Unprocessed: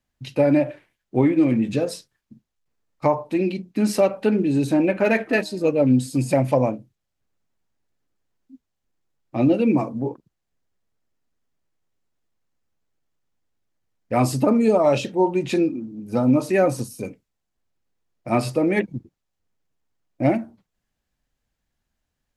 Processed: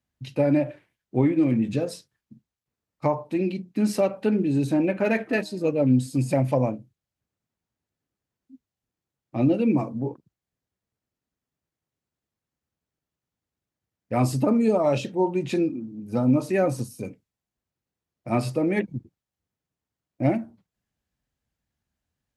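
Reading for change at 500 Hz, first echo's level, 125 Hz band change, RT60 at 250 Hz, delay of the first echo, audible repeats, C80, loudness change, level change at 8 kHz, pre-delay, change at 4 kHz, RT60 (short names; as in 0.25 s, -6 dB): -4.0 dB, none, -0.5 dB, none, none, none, none, -3.5 dB, -5.0 dB, none, -5.0 dB, none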